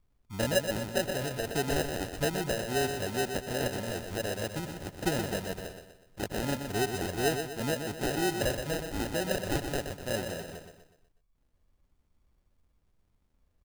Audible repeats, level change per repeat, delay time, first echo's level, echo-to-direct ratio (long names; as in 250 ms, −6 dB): 4, −7.0 dB, 123 ms, −7.0 dB, −6.0 dB